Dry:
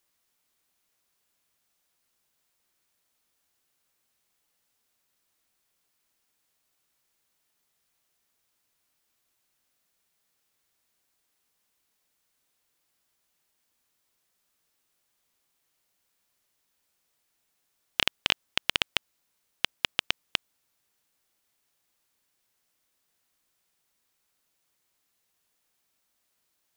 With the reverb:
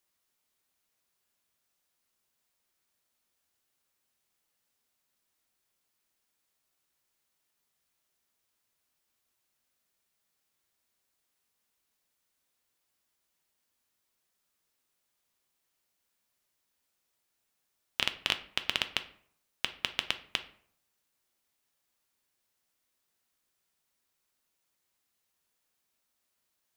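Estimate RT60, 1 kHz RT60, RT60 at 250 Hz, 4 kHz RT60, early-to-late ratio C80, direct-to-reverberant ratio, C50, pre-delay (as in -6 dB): 0.60 s, 0.60 s, 0.65 s, 0.35 s, 18.5 dB, 8.5 dB, 14.5 dB, 3 ms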